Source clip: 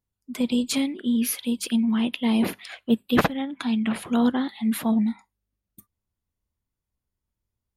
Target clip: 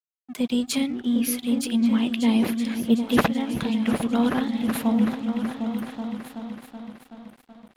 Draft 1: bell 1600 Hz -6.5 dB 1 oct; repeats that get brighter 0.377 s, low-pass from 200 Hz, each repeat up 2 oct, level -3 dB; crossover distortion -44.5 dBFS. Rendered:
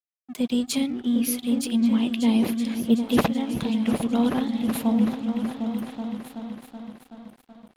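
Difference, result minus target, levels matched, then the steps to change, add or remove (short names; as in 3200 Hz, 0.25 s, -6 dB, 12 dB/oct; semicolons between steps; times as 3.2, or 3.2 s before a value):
2000 Hz band -4.0 dB
remove: bell 1600 Hz -6.5 dB 1 oct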